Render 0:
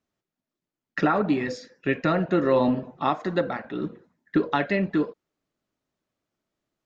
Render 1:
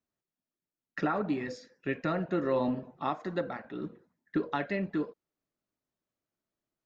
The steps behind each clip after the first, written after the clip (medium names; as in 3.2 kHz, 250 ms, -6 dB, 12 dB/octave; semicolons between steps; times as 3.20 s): peaking EQ 3.2 kHz -2 dB; trim -8 dB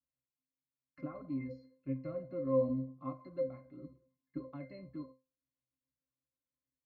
pitch-class resonator C, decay 0.26 s; trim +4 dB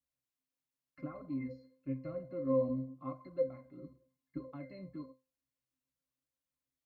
flange 0.92 Hz, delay 0.4 ms, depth 5.5 ms, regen +72%; trim +4.5 dB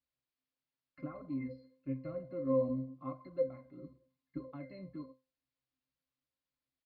resampled via 11.025 kHz